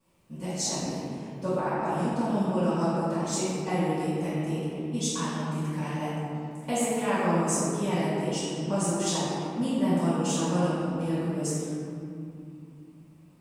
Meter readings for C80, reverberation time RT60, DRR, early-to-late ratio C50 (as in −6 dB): −2.0 dB, 2.6 s, −13.0 dB, −4.0 dB